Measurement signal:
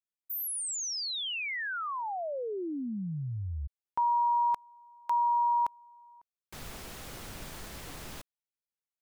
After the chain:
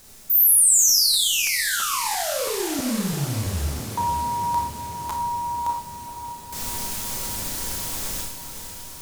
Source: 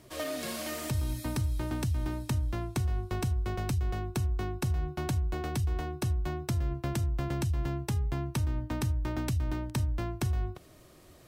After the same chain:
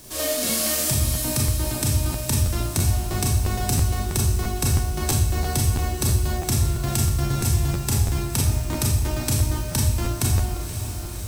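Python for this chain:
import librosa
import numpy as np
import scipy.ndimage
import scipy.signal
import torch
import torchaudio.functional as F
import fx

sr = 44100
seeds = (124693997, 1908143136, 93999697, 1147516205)

p1 = fx.dmg_noise_colour(x, sr, seeds[0], colour='pink', level_db=-60.0)
p2 = fx.bass_treble(p1, sr, bass_db=3, treble_db=13)
p3 = p2 + fx.echo_diffused(p2, sr, ms=542, feedback_pct=68, wet_db=-9.5, dry=0)
p4 = fx.rev_schroeder(p3, sr, rt60_s=0.53, comb_ms=28, drr_db=-1.5)
p5 = fx.buffer_crackle(p4, sr, first_s=0.47, period_s=0.33, block=512, kind='repeat')
y = p5 * 10.0 ** (3.0 / 20.0)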